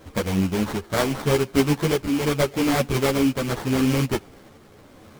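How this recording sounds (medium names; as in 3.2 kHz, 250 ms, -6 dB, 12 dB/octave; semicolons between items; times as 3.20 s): a buzz of ramps at a fixed pitch in blocks of 8 samples; tremolo triangle 0.8 Hz, depth 40%; aliases and images of a low sample rate 2.7 kHz, jitter 20%; a shimmering, thickened sound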